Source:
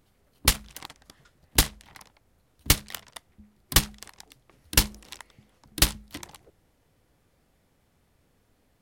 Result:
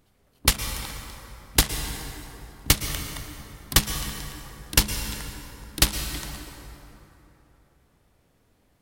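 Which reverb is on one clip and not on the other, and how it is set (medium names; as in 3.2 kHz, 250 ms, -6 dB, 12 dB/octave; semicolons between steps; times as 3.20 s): plate-style reverb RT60 3.4 s, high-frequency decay 0.55×, pre-delay 100 ms, DRR 6 dB; trim +1 dB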